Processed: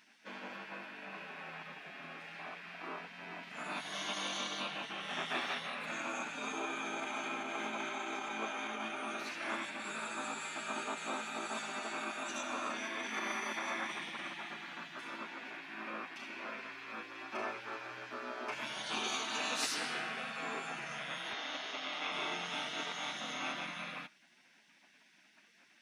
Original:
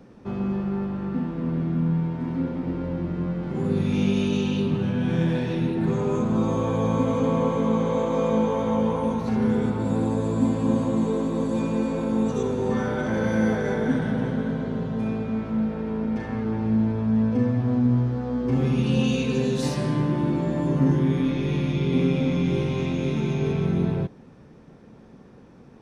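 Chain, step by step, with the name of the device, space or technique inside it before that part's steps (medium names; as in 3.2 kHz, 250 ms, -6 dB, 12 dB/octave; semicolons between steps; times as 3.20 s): laptop speaker (high-pass 440 Hz 24 dB/octave; peaking EQ 1.2 kHz +11 dB 0.45 oct; peaking EQ 2.5 kHz +10 dB 0.25 oct; peak limiter -20 dBFS, peak gain reduction 8.5 dB); 21.33–22.12 s: Chebyshev band-pass 330–5800 Hz, order 2; spectral gate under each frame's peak -15 dB weak; trim +1.5 dB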